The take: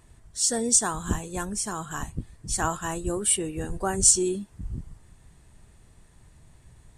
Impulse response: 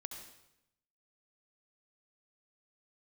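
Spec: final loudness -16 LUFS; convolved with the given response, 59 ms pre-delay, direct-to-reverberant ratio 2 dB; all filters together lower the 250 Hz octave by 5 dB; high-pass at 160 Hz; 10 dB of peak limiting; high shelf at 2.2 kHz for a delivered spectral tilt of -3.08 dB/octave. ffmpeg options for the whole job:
-filter_complex "[0:a]highpass=160,equalizer=f=250:t=o:g=-6.5,highshelf=f=2200:g=-7,alimiter=limit=0.0944:level=0:latency=1,asplit=2[s0][s1];[1:a]atrim=start_sample=2205,adelay=59[s2];[s1][s2]afir=irnorm=-1:irlink=0,volume=1.12[s3];[s0][s3]amix=inputs=2:normalize=0,volume=5.96"

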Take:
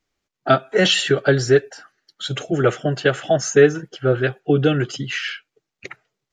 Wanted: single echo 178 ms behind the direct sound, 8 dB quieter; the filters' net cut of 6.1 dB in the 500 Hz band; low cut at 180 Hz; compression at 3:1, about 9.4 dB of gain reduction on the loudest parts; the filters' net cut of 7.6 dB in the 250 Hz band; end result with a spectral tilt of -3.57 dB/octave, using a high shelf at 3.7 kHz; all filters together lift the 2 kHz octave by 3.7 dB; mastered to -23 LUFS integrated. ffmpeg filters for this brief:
-af "highpass=180,equalizer=f=250:t=o:g=-7,equalizer=f=500:t=o:g=-5.5,equalizer=f=2000:t=o:g=7,highshelf=f=3700:g=-7,acompressor=threshold=0.0631:ratio=3,aecho=1:1:178:0.398,volume=1.68"

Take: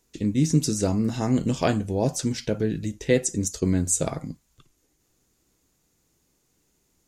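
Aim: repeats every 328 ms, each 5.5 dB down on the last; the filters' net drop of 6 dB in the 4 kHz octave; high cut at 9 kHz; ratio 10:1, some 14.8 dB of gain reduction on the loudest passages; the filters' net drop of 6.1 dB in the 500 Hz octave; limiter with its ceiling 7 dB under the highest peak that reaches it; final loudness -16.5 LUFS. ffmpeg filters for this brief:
-af "lowpass=9000,equalizer=f=500:t=o:g=-7.5,equalizer=f=4000:t=o:g=-8,acompressor=threshold=0.0251:ratio=10,alimiter=level_in=1.41:limit=0.0631:level=0:latency=1,volume=0.708,aecho=1:1:328|656|984|1312|1640|1968|2296:0.531|0.281|0.149|0.079|0.0419|0.0222|0.0118,volume=11.2"

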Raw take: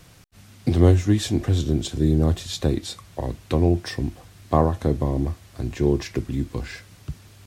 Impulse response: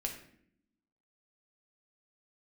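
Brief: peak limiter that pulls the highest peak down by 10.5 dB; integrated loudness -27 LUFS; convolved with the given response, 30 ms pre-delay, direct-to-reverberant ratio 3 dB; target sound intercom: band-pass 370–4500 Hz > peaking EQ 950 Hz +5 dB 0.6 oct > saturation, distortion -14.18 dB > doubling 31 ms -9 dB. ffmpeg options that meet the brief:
-filter_complex "[0:a]alimiter=limit=0.211:level=0:latency=1,asplit=2[s0][s1];[1:a]atrim=start_sample=2205,adelay=30[s2];[s1][s2]afir=irnorm=-1:irlink=0,volume=0.631[s3];[s0][s3]amix=inputs=2:normalize=0,highpass=370,lowpass=4500,equalizer=f=950:t=o:w=0.6:g=5,asoftclip=threshold=0.075,asplit=2[s4][s5];[s5]adelay=31,volume=0.355[s6];[s4][s6]amix=inputs=2:normalize=0,volume=1.88"

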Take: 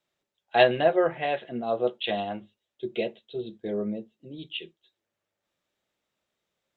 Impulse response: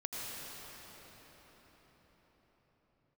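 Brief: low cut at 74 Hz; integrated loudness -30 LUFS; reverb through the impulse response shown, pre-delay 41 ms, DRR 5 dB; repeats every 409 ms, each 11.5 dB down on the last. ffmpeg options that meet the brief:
-filter_complex "[0:a]highpass=74,aecho=1:1:409|818|1227:0.266|0.0718|0.0194,asplit=2[s0][s1];[1:a]atrim=start_sample=2205,adelay=41[s2];[s1][s2]afir=irnorm=-1:irlink=0,volume=0.422[s3];[s0][s3]amix=inputs=2:normalize=0,volume=0.668"

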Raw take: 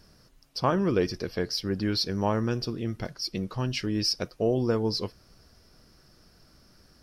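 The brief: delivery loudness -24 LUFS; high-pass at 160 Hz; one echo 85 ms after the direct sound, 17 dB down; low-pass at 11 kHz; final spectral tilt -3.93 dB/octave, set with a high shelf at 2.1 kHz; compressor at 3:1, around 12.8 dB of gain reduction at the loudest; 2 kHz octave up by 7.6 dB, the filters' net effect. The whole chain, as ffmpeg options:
-af "highpass=160,lowpass=11000,equalizer=f=2000:t=o:g=8,highshelf=f=2100:g=3.5,acompressor=threshold=0.0141:ratio=3,aecho=1:1:85:0.141,volume=4.73"

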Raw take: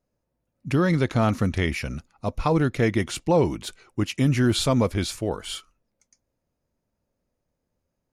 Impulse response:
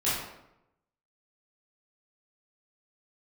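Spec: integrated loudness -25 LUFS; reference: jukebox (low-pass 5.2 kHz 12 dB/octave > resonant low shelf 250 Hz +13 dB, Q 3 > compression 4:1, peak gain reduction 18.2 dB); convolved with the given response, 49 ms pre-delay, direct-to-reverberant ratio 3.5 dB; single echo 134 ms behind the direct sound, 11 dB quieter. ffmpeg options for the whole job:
-filter_complex "[0:a]aecho=1:1:134:0.282,asplit=2[s0][s1];[1:a]atrim=start_sample=2205,adelay=49[s2];[s1][s2]afir=irnorm=-1:irlink=0,volume=0.2[s3];[s0][s3]amix=inputs=2:normalize=0,lowpass=5200,lowshelf=f=250:t=q:w=3:g=13,acompressor=threshold=0.112:ratio=4,volume=0.631"

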